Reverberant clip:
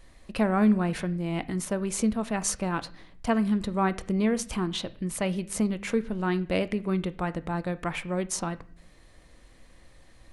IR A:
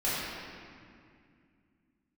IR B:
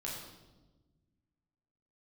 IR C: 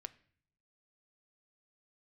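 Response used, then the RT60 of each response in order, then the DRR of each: C; 2.3, 1.2, 0.55 seconds; −11.5, −4.5, 12.0 decibels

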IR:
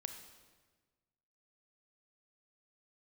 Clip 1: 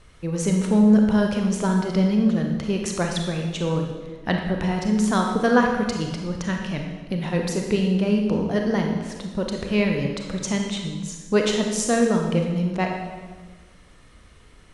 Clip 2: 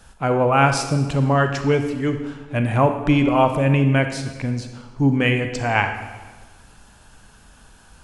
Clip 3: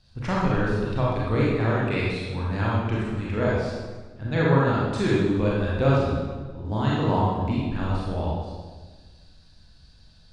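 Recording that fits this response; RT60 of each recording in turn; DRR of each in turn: 2; 1.4, 1.4, 1.4 seconds; 1.5, 6.5, −6.5 decibels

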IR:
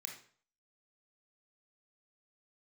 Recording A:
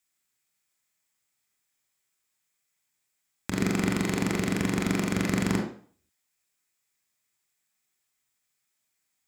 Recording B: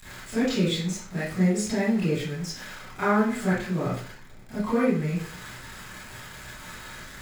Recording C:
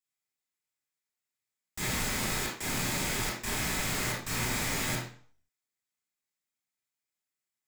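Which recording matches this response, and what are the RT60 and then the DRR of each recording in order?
A; 0.50, 0.50, 0.50 seconds; 0.5, −12.5, −4.5 decibels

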